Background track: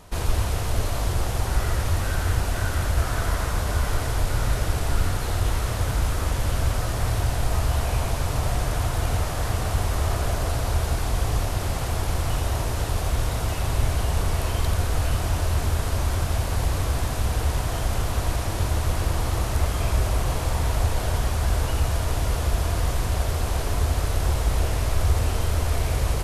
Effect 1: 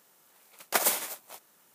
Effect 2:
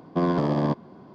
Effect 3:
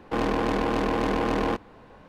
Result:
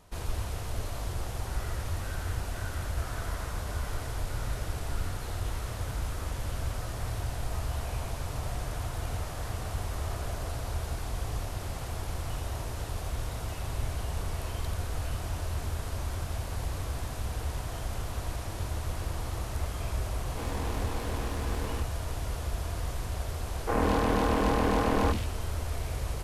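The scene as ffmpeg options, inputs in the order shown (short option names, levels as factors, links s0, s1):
-filter_complex "[3:a]asplit=2[s0][s1];[0:a]volume=0.316[s2];[s0]volume=33.5,asoftclip=hard,volume=0.0299[s3];[s1]acrossover=split=300|2400[s4][s5][s6];[s4]adelay=50[s7];[s6]adelay=140[s8];[s7][s5][s8]amix=inputs=3:normalize=0[s9];[s3]atrim=end=2.08,asetpts=PTS-STARTPTS,volume=0.447,afade=t=in:d=0.004:c=hsin,afade=t=out:st=2.076:d=0.004:c=hsin,adelay=20260[s10];[s9]atrim=end=2.08,asetpts=PTS-STARTPTS,volume=0.944,afade=t=in:d=0.004:c=hsin,afade=t=out:st=2.076:d=0.004:c=hsin,adelay=1038996S[s11];[s2][s10][s11]amix=inputs=3:normalize=0"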